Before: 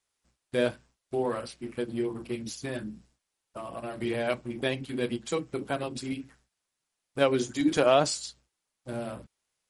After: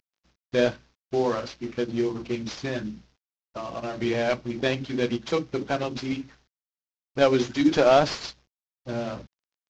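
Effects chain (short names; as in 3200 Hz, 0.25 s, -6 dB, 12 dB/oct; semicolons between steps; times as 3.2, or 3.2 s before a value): CVSD 32 kbps; gain +5 dB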